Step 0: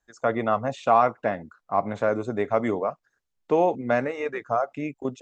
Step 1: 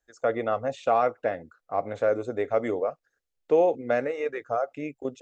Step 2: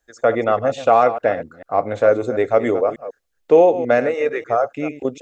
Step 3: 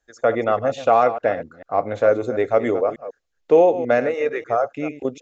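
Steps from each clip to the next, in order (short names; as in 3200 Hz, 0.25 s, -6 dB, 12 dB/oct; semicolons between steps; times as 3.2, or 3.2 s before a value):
thirty-one-band EQ 125 Hz -5 dB, 200 Hz -10 dB, 500 Hz +7 dB, 1000 Hz -9 dB; gain -3 dB
reverse delay 0.148 s, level -12.5 dB; gain +9 dB
downsampling 16000 Hz; gain -2 dB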